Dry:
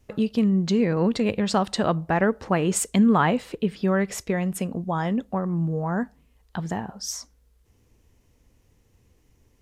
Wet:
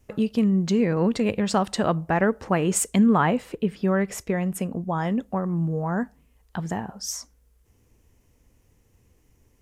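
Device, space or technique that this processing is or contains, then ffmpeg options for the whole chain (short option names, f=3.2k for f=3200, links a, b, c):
exciter from parts: -filter_complex "[0:a]asplit=2[a][b];[b]highpass=f=3.7k:w=0.5412,highpass=f=3.7k:w=1.3066,asoftclip=type=tanh:threshold=-19.5dB,volume=-7dB[c];[a][c]amix=inputs=2:normalize=0,asettb=1/sr,asplit=3[d][e][f];[d]atrim=end=3.064[g];[e]atrim=start=3.06:end=5.02,asetpts=PTS-STARTPTS,afade=t=in:d=0.004:c=qsin,afade=t=out:st=1.956:d=0.004:c=qsin,equalizer=f=7.1k:w=0.3:g=-3[h];[f]atrim=start=5.016[i];[g][h]acrossfade=d=0.004:c1=hsin:c2=qsin[j];[j][i]acrossfade=d=0.004:c1=qsin:c2=hsin"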